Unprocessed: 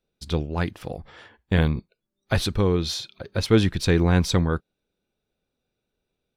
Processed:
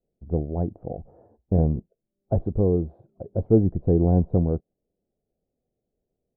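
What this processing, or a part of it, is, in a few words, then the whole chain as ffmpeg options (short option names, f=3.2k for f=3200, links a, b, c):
under water: -af "lowpass=f=580:w=0.5412,lowpass=f=580:w=1.3066,equalizer=f=710:t=o:w=0.49:g=9"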